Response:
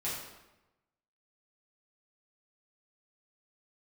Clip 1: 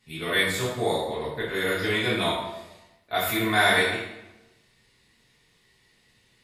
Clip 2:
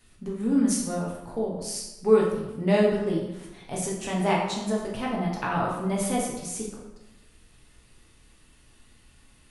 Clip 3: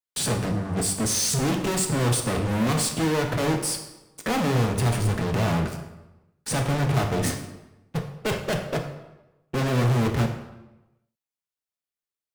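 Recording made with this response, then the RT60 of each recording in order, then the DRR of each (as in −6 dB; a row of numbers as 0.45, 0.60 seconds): 1; 1.0, 1.0, 1.0 seconds; −9.5, −4.0, 3.5 decibels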